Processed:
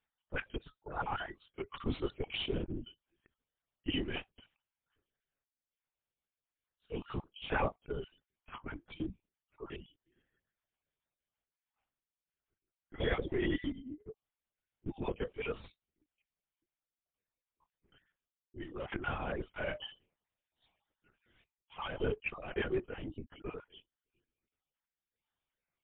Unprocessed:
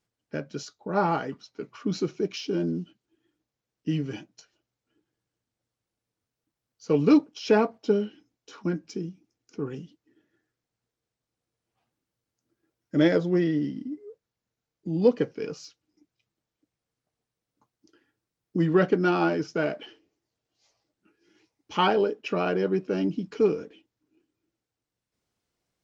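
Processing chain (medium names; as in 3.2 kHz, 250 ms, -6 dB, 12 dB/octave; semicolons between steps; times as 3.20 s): random holes in the spectrogram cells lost 25%; high-pass 1 kHz 6 dB/octave; spectral noise reduction 9 dB; reverse; compression 12:1, threshold -39 dBFS, peak gain reduction 17 dB; reverse; random-step tremolo 3.5 Hz, depth 75%; in parallel at -8.5 dB: Schmitt trigger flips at -42.5 dBFS; on the sum: LPC vocoder at 8 kHz whisper; trim +10.5 dB; MP3 48 kbps 8 kHz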